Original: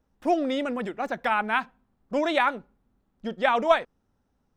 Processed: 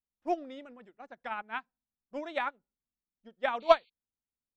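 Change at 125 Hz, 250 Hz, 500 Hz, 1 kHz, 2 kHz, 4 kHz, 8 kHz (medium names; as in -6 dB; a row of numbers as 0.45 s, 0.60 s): under -20 dB, -14.0 dB, -5.5 dB, -7.5 dB, -10.5 dB, -8.0 dB, no reading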